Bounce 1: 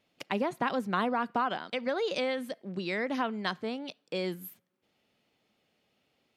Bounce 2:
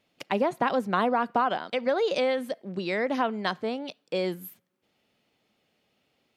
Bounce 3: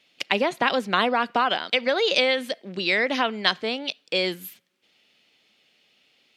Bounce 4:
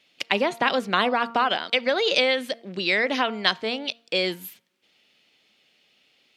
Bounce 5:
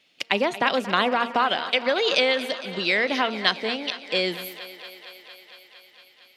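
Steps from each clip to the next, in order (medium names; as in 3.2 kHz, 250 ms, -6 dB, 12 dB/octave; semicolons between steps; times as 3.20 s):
dynamic bell 620 Hz, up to +5 dB, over -44 dBFS, Q 1; trim +2 dB
frequency weighting D; trim +2 dB
de-hum 231.5 Hz, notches 6
thinning echo 229 ms, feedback 79%, high-pass 260 Hz, level -14.5 dB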